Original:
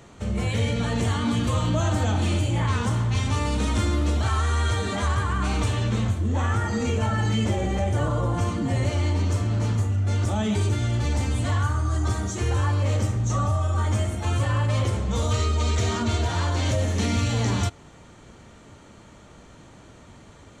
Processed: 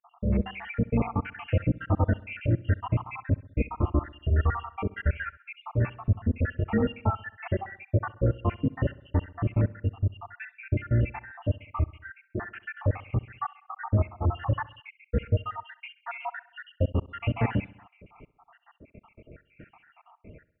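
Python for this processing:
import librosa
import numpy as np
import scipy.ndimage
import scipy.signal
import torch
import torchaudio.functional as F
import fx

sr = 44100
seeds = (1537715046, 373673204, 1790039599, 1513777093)

p1 = fx.spec_dropout(x, sr, seeds[0], share_pct=81)
p2 = scipy.signal.sosfilt(scipy.signal.cheby1(8, 1.0, 2800.0, 'lowpass', fs=sr, output='sos'), p1)
p3 = p2 + fx.echo_feedback(p2, sr, ms=66, feedback_pct=57, wet_db=-20.5, dry=0)
y = p3 * 10.0 ** (3.0 / 20.0)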